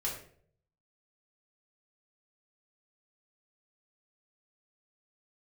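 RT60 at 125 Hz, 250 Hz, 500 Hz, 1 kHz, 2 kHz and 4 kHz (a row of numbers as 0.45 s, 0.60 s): 0.95 s, 0.65 s, 0.65 s, 0.45 s, 0.45 s, 0.40 s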